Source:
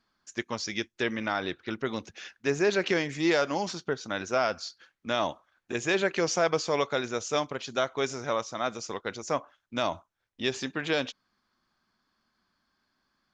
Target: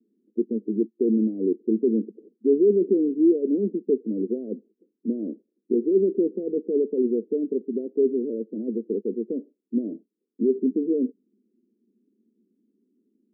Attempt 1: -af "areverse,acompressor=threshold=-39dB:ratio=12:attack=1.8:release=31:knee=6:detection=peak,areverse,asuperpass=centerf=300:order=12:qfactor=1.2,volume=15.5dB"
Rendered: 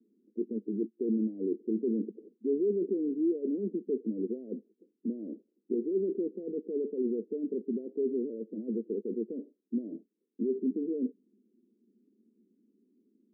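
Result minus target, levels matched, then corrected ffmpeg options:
compressor: peak gain reduction +10.5 dB
-af "areverse,acompressor=threshold=-27.5dB:ratio=12:attack=1.8:release=31:knee=6:detection=peak,areverse,asuperpass=centerf=300:order=12:qfactor=1.2,volume=15.5dB"

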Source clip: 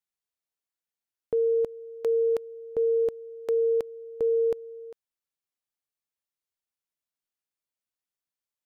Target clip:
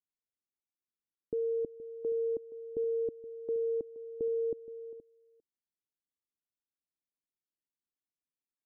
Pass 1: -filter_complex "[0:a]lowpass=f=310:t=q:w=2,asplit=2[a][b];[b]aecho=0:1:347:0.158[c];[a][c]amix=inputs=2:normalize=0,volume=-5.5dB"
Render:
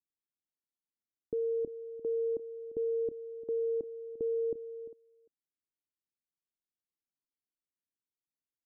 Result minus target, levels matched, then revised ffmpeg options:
echo 0.125 s early
-filter_complex "[0:a]lowpass=f=310:t=q:w=2,asplit=2[a][b];[b]aecho=0:1:472:0.158[c];[a][c]amix=inputs=2:normalize=0,volume=-5.5dB"

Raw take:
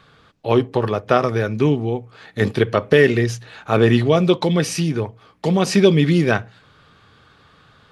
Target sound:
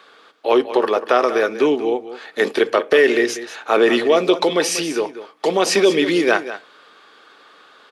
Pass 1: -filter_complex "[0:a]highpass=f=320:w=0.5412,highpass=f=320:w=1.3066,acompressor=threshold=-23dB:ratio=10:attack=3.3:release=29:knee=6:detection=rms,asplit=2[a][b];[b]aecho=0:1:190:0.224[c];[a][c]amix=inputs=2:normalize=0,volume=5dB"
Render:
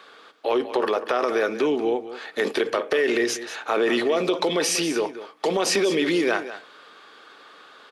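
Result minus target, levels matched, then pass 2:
compressor: peak gain reduction +9 dB
-filter_complex "[0:a]highpass=f=320:w=0.5412,highpass=f=320:w=1.3066,acompressor=threshold=-13dB:ratio=10:attack=3.3:release=29:knee=6:detection=rms,asplit=2[a][b];[b]aecho=0:1:190:0.224[c];[a][c]amix=inputs=2:normalize=0,volume=5dB"

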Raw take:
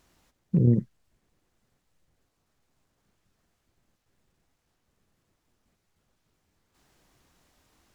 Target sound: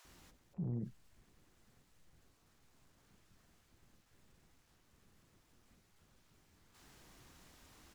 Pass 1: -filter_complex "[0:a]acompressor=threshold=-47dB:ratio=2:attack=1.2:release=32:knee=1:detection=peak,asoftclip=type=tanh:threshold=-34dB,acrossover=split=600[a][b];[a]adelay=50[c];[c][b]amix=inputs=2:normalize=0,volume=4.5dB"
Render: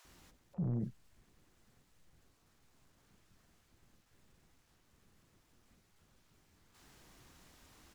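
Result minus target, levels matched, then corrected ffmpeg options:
compressor: peak gain reduction -6 dB
-filter_complex "[0:a]acompressor=threshold=-58.5dB:ratio=2:attack=1.2:release=32:knee=1:detection=peak,asoftclip=type=tanh:threshold=-34dB,acrossover=split=600[a][b];[a]adelay=50[c];[c][b]amix=inputs=2:normalize=0,volume=4.5dB"

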